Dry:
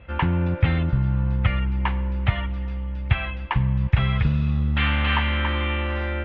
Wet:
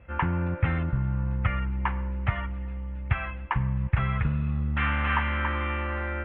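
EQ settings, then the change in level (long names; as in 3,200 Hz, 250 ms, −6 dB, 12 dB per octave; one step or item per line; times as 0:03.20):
low-pass filter 2,600 Hz 24 dB per octave
dynamic equaliser 1,300 Hz, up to +6 dB, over −41 dBFS, Q 1.3
−5.5 dB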